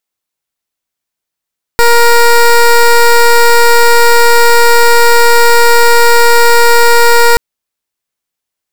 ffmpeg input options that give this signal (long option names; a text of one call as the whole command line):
ffmpeg -f lavfi -i "aevalsrc='0.596*(2*lt(mod(471*t,1),0.15)-1)':duration=5.58:sample_rate=44100" out.wav